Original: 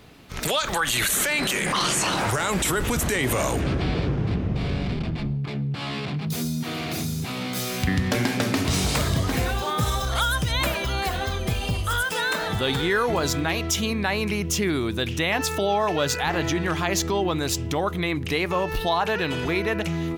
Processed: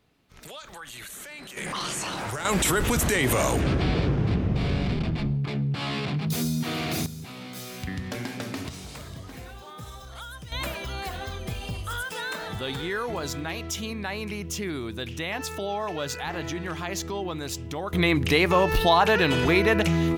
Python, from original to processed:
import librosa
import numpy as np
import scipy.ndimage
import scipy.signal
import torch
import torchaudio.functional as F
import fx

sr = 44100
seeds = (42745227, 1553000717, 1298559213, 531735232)

y = fx.gain(x, sr, db=fx.steps((0.0, -18.0), (1.57, -8.0), (2.45, 0.5), (7.06, -10.0), (8.69, -17.0), (10.52, -7.5), (17.93, 4.0)))